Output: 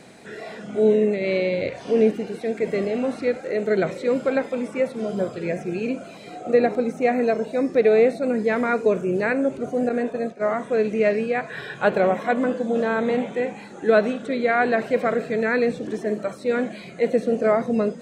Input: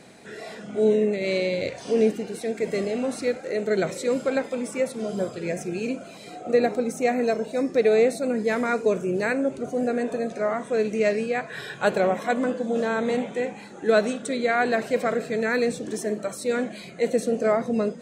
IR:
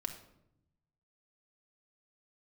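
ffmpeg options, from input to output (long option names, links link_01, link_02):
-filter_complex "[0:a]acrossover=split=3500[link_01][link_02];[link_02]acompressor=threshold=-56dB:ratio=4:attack=1:release=60[link_03];[link_01][link_03]amix=inputs=2:normalize=0,asettb=1/sr,asplit=3[link_04][link_05][link_06];[link_04]atrim=end=9.894[link_07];[link_05]atrim=start=9.89:end=10.48,asetpts=PTS-STARTPTS,afade=type=in:duration=0.004:curve=qsin,afade=type=out:start_time=0.586:duration=0.004:curve=qsin,agate=range=-33dB:threshold=-24dB:ratio=3:detection=peak[link_08];[link_06]atrim=start=10.476[link_09];[link_07][link_08]acrossfade=duration=0.004:curve1=hsin:curve2=qsin[link_10];[link_10][link_09]acrossfade=duration=0.004:curve1=qsin:curve2=hsin,volume=2.5dB"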